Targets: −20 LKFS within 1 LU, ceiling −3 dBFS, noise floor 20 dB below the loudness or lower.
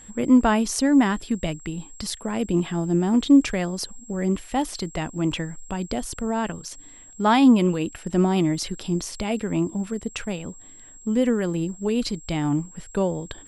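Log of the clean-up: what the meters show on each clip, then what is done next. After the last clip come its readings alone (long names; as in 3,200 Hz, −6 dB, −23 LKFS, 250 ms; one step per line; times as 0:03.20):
interfering tone 7,600 Hz; level of the tone −45 dBFS; integrated loudness −23.5 LKFS; sample peak −6.5 dBFS; target loudness −20.0 LKFS
→ notch filter 7,600 Hz, Q 30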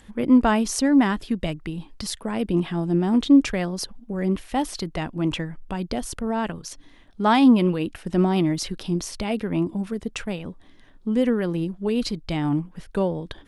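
interfering tone none found; integrated loudness −23.5 LKFS; sample peak −7.0 dBFS; target loudness −20.0 LKFS
→ level +3.5 dB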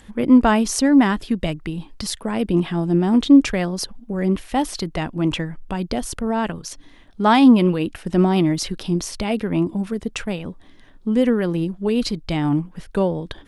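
integrated loudness −20.0 LKFS; sample peak −3.5 dBFS; background noise floor −47 dBFS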